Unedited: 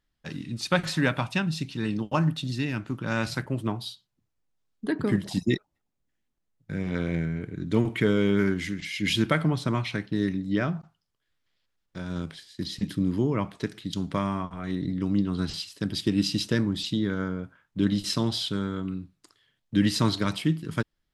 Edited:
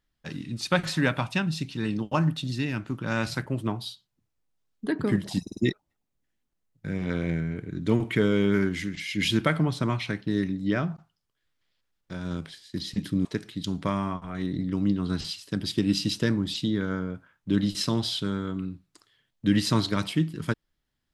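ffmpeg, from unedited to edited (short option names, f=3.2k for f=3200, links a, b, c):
-filter_complex "[0:a]asplit=5[a][b][c][d][e];[a]atrim=end=5.472[f];[b]atrim=start=5.418:end=5.472[g];[c]atrim=start=5.418:end=5.472[h];[d]atrim=start=5.418:end=13.102[i];[e]atrim=start=13.538[j];[f][g]acrossfade=d=0.004:c1=hsin:c2=hsin[k];[k][h]acrossfade=d=0.004:c1=hsin:c2=hsin[l];[l][i]acrossfade=d=0.004:c1=hsin:c2=hsin[m];[m][j]acrossfade=d=0.004:c1=hsin:c2=hsin"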